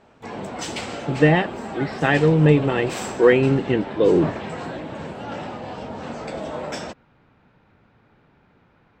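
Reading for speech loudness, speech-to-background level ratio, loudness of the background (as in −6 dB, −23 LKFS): −19.5 LKFS, 12.0 dB, −31.5 LKFS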